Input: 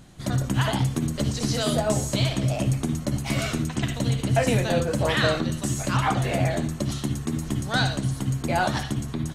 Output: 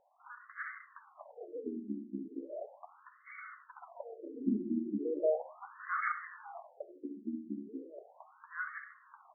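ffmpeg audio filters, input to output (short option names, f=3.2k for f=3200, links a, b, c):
-filter_complex "[0:a]asettb=1/sr,asplit=3[a][b][c];[a]atrim=end=3.094[d];[b]atrim=start=3.09:end=3.76,asetpts=PTS-STARTPTS,afade=t=in:d=0.004:c=qsin,afade=t=out:st=0.666:d=0.004:c=qsin,highshelf=f=2.2k:g=-9[e];[c]atrim=start=3.756[f];[d][e]acrossfade=d=0.004:c1=hsin:c2=qsin[g];[g][f]acrossfade=d=0.004:c1=qsin:c2=hsin,asplit=3[h][i][j];[h]afade=t=out:st=4.38:d=0.02[k];[i]acontrast=32,afade=t=in:st=4.38:d=0.02,afade=t=out:st=6.24:d=0.02[l];[j]afade=t=in:st=6.24:d=0.02[m];[k][l][m]amix=inputs=3:normalize=0,afftfilt=real='re*between(b*sr/1024,260*pow(1600/260,0.5+0.5*sin(2*PI*0.37*pts/sr))/1.41,260*pow(1600/260,0.5+0.5*sin(2*PI*0.37*pts/sr))*1.41)':imag='im*between(b*sr/1024,260*pow(1600/260,0.5+0.5*sin(2*PI*0.37*pts/sr))/1.41,260*pow(1600/260,0.5+0.5*sin(2*PI*0.37*pts/sr))*1.41)':win_size=1024:overlap=0.75,volume=-9dB"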